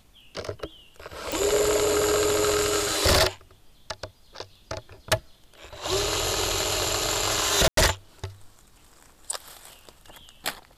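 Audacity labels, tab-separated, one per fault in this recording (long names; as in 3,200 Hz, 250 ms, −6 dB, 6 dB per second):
1.320000	1.320000	click
7.680000	7.770000	drop-out 93 ms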